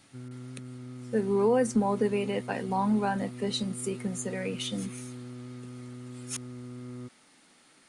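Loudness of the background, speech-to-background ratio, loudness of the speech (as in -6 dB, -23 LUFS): -43.0 LUFS, 13.0 dB, -30.0 LUFS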